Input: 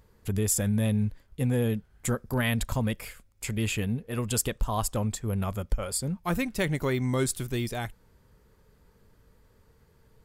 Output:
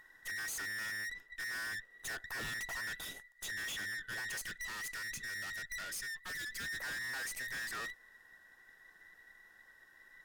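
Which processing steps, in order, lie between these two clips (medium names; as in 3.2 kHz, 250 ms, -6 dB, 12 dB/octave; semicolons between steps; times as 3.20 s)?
every band turned upside down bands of 2 kHz; valve stage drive 41 dB, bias 0.6; 4.42–6.64 s: peaking EQ 840 Hz -10.5 dB 0.9 oct; trim +1.5 dB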